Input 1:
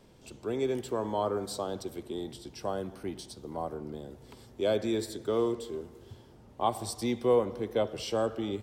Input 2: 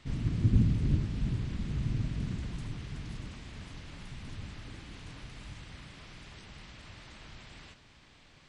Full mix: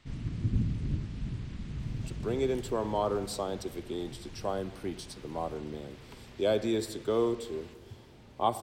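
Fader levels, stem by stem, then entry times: +0.5 dB, -4.5 dB; 1.80 s, 0.00 s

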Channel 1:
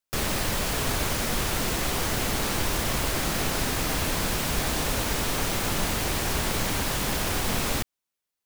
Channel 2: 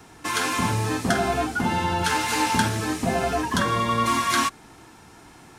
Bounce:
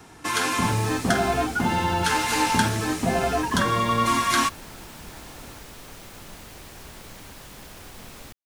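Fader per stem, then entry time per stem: -16.0 dB, +0.5 dB; 0.50 s, 0.00 s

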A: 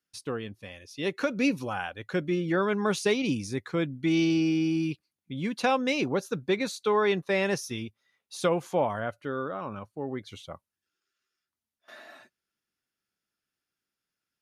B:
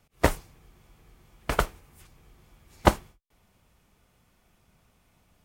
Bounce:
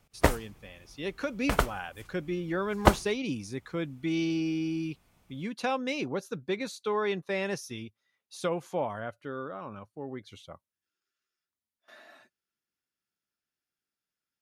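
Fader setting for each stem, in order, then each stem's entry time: -5.0 dB, -1.0 dB; 0.00 s, 0.00 s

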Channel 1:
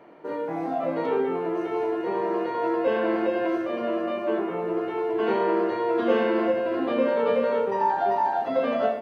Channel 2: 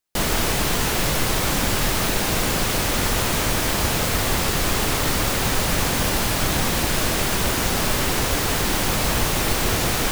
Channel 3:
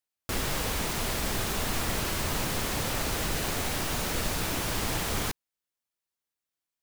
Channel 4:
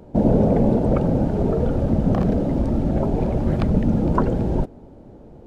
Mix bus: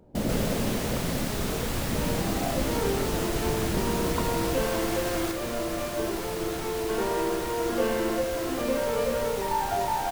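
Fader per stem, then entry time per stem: -4.5 dB, -15.0 dB, -5.0 dB, -11.5 dB; 1.70 s, 0.00 s, 0.00 s, 0.00 s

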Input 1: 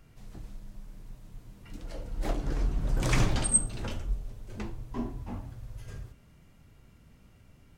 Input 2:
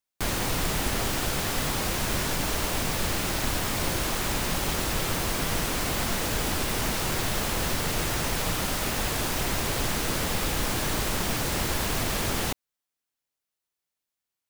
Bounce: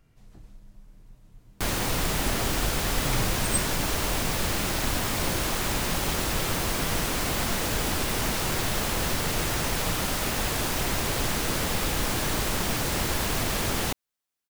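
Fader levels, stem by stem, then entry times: -5.0 dB, +0.5 dB; 0.00 s, 1.40 s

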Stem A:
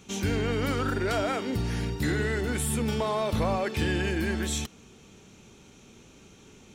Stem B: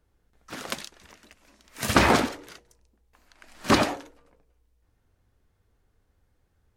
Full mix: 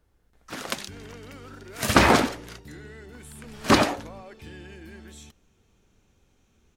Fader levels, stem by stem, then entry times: -16.0 dB, +2.0 dB; 0.65 s, 0.00 s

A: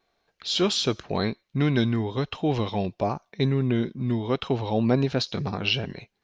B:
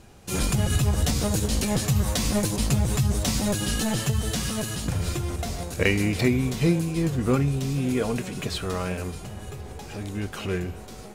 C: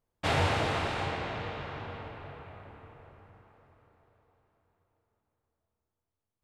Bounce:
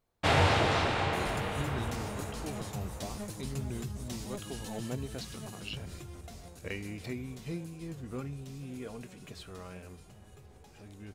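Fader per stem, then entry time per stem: -17.0 dB, -17.0 dB, +2.5 dB; 0.00 s, 0.85 s, 0.00 s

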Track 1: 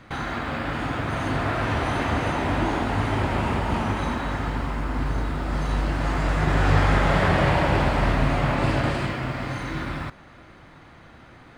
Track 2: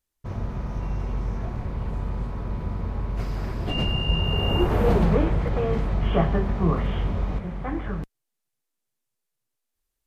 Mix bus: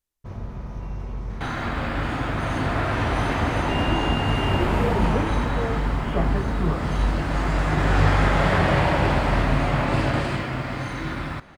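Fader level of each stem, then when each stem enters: +0.5 dB, -3.5 dB; 1.30 s, 0.00 s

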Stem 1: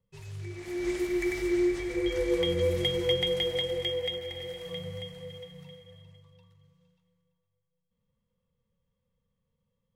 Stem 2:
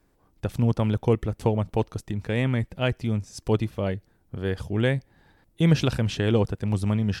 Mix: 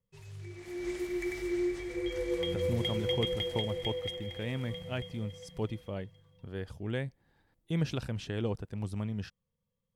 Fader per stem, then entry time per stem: -5.5 dB, -11.5 dB; 0.00 s, 2.10 s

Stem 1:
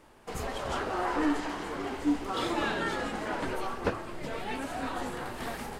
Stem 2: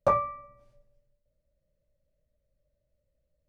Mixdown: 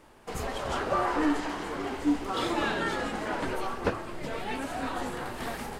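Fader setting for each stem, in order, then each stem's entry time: +1.5 dB, -6.0 dB; 0.00 s, 0.85 s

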